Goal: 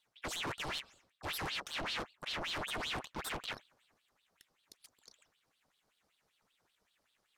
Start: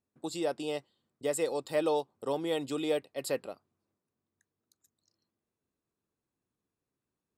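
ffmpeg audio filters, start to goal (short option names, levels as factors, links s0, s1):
-af "equalizer=f=125:t=o:w=0.33:g=5,equalizer=f=800:t=o:w=0.33:g=10,equalizer=f=5000:t=o:w=0.33:g=11,areverse,acompressor=threshold=0.01:ratio=6,areverse,aeval=exprs='(tanh(316*val(0)+0.7)-tanh(0.7))/316':c=same,aresample=32000,aresample=44100,aeval=exprs='val(0)*sin(2*PI*2000*n/s+2000*0.85/5.2*sin(2*PI*5.2*n/s))':c=same,volume=5.62"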